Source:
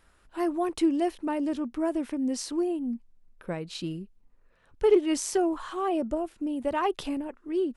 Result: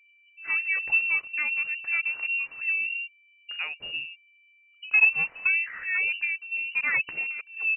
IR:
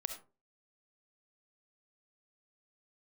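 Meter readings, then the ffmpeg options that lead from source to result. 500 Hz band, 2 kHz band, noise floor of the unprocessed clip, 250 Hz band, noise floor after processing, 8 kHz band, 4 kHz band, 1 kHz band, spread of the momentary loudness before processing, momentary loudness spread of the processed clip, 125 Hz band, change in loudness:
below −25 dB, +21.0 dB, −63 dBFS, below −30 dB, −60 dBFS, below −40 dB, +3.0 dB, −12.5 dB, 12 LU, 12 LU, below −10 dB, +4.0 dB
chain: -filter_complex "[0:a]highpass=41,acrossover=split=220[link_01][link_02];[link_02]adelay=100[link_03];[link_01][link_03]amix=inputs=2:normalize=0,anlmdn=0.01,aeval=exprs='val(0)+0.00112*sin(2*PI*660*n/s)':channel_layout=same,lowpass=frequency=2600:width_type=q:width=0.5098,lowpass=frequency=2600:width_type=q:width=0.6013,lowpass=frequency=2600:width_type=q:width=0.9,lowpass=frequency=2600:width_type=q:width=2.563,afreqshift=-3000,volume=1.5dB"

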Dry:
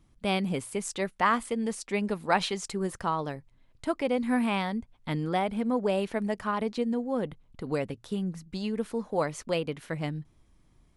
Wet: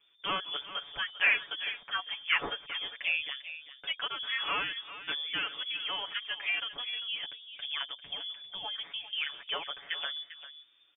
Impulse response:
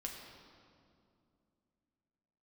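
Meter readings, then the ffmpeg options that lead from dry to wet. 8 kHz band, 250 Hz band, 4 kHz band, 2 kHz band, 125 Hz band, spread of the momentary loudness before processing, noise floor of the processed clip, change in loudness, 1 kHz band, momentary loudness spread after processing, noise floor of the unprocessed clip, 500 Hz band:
below −40 dB, −25.5 dB, +9.0 dB, +4.5 dB, −25.0 dB, 8 LU, −62 dBFS, −2.5 dB, −9.0 dB, 10 LU, −63 dBFS, −18.5 dB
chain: -filter_complex "[0:a]lowshelf=frequency=200:gain=-10.5,aecho=1:1:7.3:0.95,bandreject=frequency=83.64:width_type=h:width=4,bandreject=frequency=167.28:width_type=h:width=4,bandreject=frequency=250.92:width_type=h:width=4,bandreject=frequency=334.56:width_type=h:width=4,bandreject=frequency=418.2:width_type=h:width=4,bandreject=frequency=501.84:width_type=h:width=4,bandreject=frequency=585.48:width_type=h:width=4,acrossover=split=120|1100[link_01][link_02][link_03];[link_02]acompressor=threshold=-37dB:ratio=6[link_04];[link_01][link_04][link_03]amix=inputs=3:normalize=0,asplit=2[link_05][link_06];[link_06]adelay=396.5,volume=-12dB,highshelf=frequency=4000:gain=-8.92[link_07];[link_05][link_07]amix=inputs=2:normalize=0,lowpass=frequency=3100:width_type=q:width=0.5098,lowpass=frequency=3100:width_type=q:width=0.6013,lowpass=frequency=3100:width_type=q:width=0.9,lowpass=frequency=3100:width_type=q:width=2.563,afreqshift=-3600"

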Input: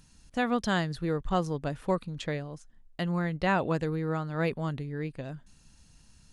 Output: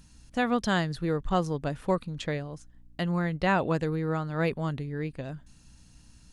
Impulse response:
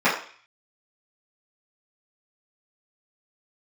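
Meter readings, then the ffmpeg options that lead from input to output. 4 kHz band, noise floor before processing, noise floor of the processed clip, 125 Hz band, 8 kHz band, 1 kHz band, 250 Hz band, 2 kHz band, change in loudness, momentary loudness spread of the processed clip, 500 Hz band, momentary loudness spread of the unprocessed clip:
+1.5 dB, −59 dBFS, −56 dBFS, +1.5 dB, +1.5 dB, +1.5 dB, +1.5 dB, +1.5 dB, +1.5 dB, 13 LU, +1.5 dB, 13 LU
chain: -af "aeval=exprs='val(0)+0.00112*(sin(2*PI*60*n/s)+sin(2*PI*2*60*n/s)/2+sin(2*PI*3*60*n/s)/3+sin(2*PI*4*60*n/s)/4+sin(2*PI*5*60*n/s)/5)':channel_layout=same,volume=1.5dB"

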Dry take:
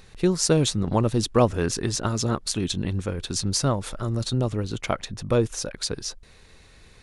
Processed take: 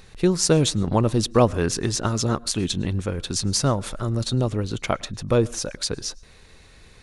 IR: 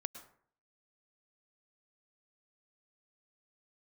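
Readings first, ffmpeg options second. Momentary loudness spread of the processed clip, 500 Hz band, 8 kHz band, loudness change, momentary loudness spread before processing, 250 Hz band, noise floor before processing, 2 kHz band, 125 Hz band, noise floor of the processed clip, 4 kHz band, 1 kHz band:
8 LU, +2.0 dB, +2.0 dB, +2.0 dB, 8 LU, +2.0 dB, −52 dBFS, +2.0 dB, +2.0 dB, −50 dBFS, +2.0 dB, +2.0 dB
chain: -filter_complex "[0:a]asplit=2[link_01][link_02];[1:a]atrim=start_sample=2205,afade=type=out:start_time=0.2:duration=0.01,atrim=end_sample=9261[link_03];[link_02][link_03]afir=irnorm=-1:irlink=0,volume=-10dB[link_04];[link_01][link_04]amix=inputs=2:normalize=0"

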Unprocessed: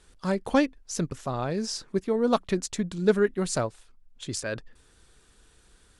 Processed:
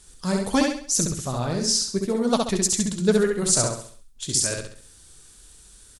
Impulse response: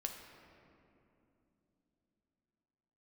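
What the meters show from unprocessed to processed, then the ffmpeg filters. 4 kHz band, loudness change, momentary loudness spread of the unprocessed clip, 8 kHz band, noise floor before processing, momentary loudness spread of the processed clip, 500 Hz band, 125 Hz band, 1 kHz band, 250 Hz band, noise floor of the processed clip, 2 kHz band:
+10.5 dB, +5.5 dB, 9 LU, +14.5 dB, −60 dBFS, 7 LU, +1.5 dB, +4.5 dB, +1.5 dB, +3.5 dB, −51 dBFS, +2.0 dB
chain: -af "flanger=delay=0.9:depth=8.9:regen=-62:speed=1.8:shape=sinusoidal,bass=frequency=250:gain=4,treble=frequency=4000:gain=15,aecho=1:1:67|134|201|268|335:0.708|0.276|0.108|0.042|0.0164,volume=3.5dB"

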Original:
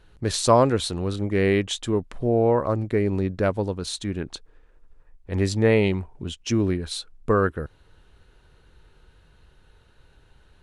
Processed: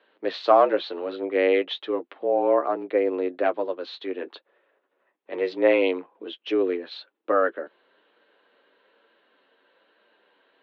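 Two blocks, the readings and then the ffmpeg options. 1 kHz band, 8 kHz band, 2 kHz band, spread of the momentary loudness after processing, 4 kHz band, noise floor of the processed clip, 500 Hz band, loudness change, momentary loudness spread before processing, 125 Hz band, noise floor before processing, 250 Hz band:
+1.5 dB, below −30 dB, 0.0 dB, 17 LU, −4.5 dB, −76 dBFS, +1.0 dB, −0.5 dB, 13 LU, below −30 dB, −57 dBFS, −5.5 dB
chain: -af "flanger=delay=7.9:depth=2.6:regen=-29:speed=1.1:shape=sinusoidal,highpass=frequency=230:width_type=q:width=0.5412,highpass=frequency=230:width_type=q:width=1.307,lowpass=frequency=3600:width_type=q:width=0.5176,lowpass=frequency=3600:width_type=q:width=0.7071,lowpass=frequency=3600:width_type=q:width=1.932,afreqshift=82,volume=3.5dB"

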